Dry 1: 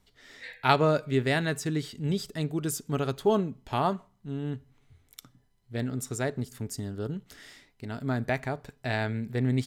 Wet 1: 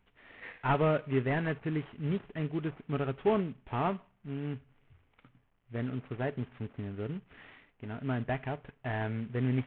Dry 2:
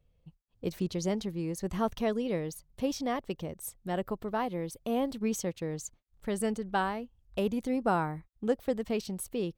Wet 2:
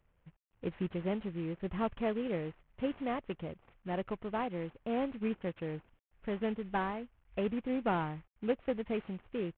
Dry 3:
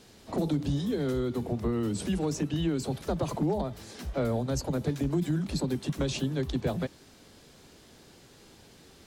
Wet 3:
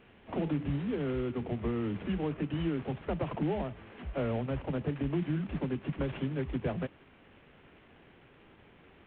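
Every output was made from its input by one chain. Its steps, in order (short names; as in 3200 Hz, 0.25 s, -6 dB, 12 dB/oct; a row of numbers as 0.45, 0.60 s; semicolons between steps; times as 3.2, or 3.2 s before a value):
CVSD 16 kbps; gain -3 dB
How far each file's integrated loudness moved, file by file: -4.5, -3.5, -3.5 LU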